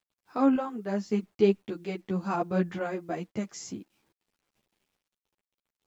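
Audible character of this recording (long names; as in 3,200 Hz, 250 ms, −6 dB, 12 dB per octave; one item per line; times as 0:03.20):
sample-and-hold tremolo 1.8 Hz
a quantiser's noise floor 12 bits, dither none
a shimmering, thickened sound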